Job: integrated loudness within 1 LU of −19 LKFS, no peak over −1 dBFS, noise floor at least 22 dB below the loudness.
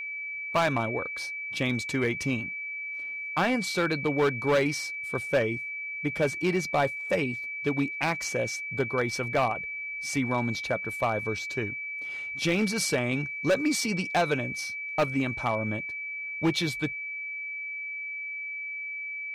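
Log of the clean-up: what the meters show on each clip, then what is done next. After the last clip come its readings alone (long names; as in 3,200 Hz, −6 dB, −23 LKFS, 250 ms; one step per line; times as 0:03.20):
share of clipped samples 0.8%; peaks flattened at −18.5 dBFS; interfering tone 2,300 Hz; level of the tone −33 dBFS; integrated loudness −28.5 LKFS; sample peak −18.5 dBFS; target loudness −19.0 LKFS
→ clipped peaks rebuilt −18.5 dBFS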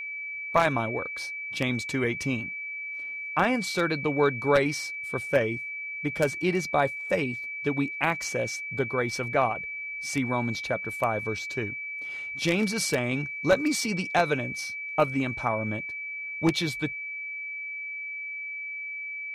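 share of clipped samples 0.0%; interfering tone 2,300 Hz; level of the tone −33 dBFS
→ notch filter 2,300 Hz, Q 30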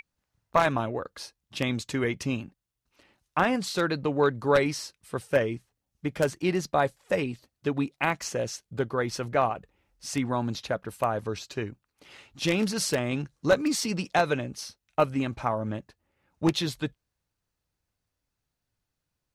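interfering tone none found; integrated loudness −28.5 LKFS; sample peak −9.0 dBFS; target loudness −19.0 LKFS
→ level +9.5 dB
brickwall limiter −1 dBFS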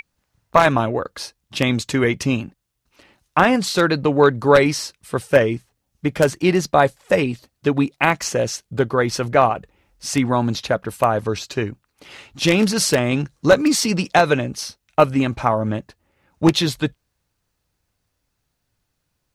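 integrated loudness −19.0 LKFS; sample peak −1.0 dBFS; background noise floor −75 dBFS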